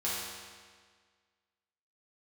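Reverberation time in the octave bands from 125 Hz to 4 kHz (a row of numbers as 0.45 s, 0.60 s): 1.7 s, 1.7 s, 1.7 s, 1.7 s, 1.6 s, 1.5 s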